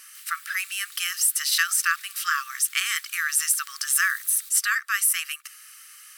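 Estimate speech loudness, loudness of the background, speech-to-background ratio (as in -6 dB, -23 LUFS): -23.0 LUFS, -42.0 LUFS, 19.0 dB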